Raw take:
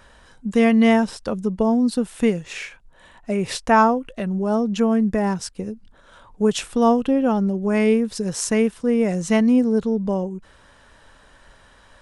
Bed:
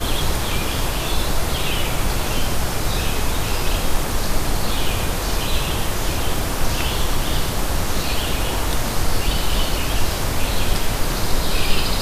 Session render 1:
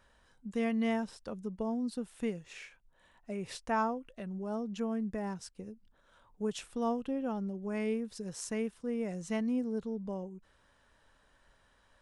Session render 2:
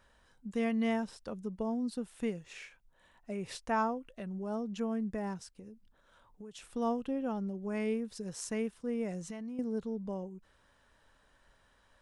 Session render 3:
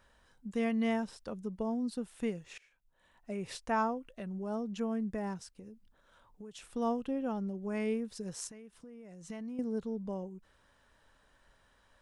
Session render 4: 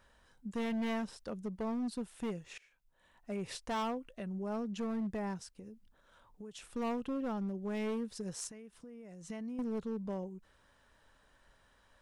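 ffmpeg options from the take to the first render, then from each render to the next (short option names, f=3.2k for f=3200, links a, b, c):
-af "volume=-16dB"
-filter_complex "[0:a]asettb=1/sr,asplit=3[a][b][c];[a]atrim=end=5.384[d];[b]atrim=start=5.38:end=6.68,asetpts=PTS-STARTPTS,afade=t=in:d=0.004:c=qsin,afade=t=out:st=1.296:d=0.004:c=qsin,acompressor=threshold=-45dB:ratio=6:attack=3.2:release=140:knee=1:detection=peak[e];[c]atrim=start=6.676[f];[d][e]acrossfade=d=0.004:c1=hsin:c2=qsin[g];[g][f]acrossfade=d=0.004:c1=qsin:c2=hsin,asettb=1/sr,asplit=3[h][i][j];[h]atrim=end=9.194[k];[i]atrim=start=9.19:end=9.59,asetpts=PTS-STARTPTS,afade=t=in:d=0.004:c=qsin,afade=t=out:st=0.396:d=0.004:c=qsin,acompressor=threshold=-38dB:ratio=12:attack=3.2:release=140:knee=1:detection=peak[l];[j]atrim=start=9.586[m];[k][l]acrossfade=d=0.004:c1=hsin:c2=qsin[n];[n][m]acrossfade=d=0.004:c1=qsin:c2=hsin"
-filter_complex "[0:a]asettb=1/sr,asplit=3[a][b][c];[a]atrim=end=8.474[d];[b]atrim=start=8.47:end=9.3,asetpts=PTS-STARTPTS,afade=t=in:d=0.004:c=qsin,afade=t=out:st=0.826:d=0.004:c=qsin,acompressor=threshold=-47dB:ratio=12:attack=3.2:release=140:knee=1:detection=peak[e];[c]atrim=start=9.296[f];[d][e]acrossfade=d=0.004:c1=hsin:c2=qsin[g];[g][f]acrossfade=d=0.004:c1=qsin:c2=hsin,asplit=2[h][i];[h]atrim=end=2.58,asetpts=PTS-STARTPTS,afade=t=out:st=2.576:d=0.004:c=hsin:silence=0.0668344[j];[i]atrim=start=2.58,asetpts=PTS-STARTPTS,afade=t=in:d=0.72:silence=0.0668344[k];[j][k]concat=n=2:v=0:a=1"
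-af "asoftclip=type=hard:threshold=-32.5dB"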